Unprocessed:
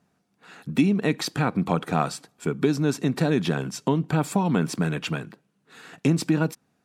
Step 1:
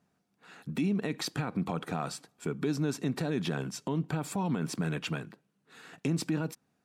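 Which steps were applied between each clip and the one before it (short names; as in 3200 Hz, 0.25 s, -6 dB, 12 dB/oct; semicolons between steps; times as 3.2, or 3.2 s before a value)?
limiter -16 dBFS, peak gain reduction 7.5 dB; gain -5.5 dB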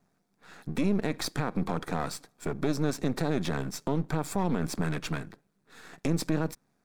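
half-wave gain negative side -12 dB; bell 2900 Hz -8.5 dB 0.28 oct; gain +5.5 dB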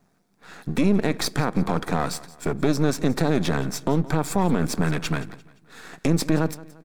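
feedback echo 0.173 s, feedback 40%, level -19 dB; gain +7 dB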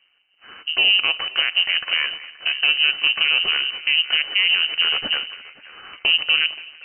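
narrowing echo 0.527 s, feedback 44%, band-pass 900 Hz, level -15 dB; inverted band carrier 3000 Hz; gain +1.5 dB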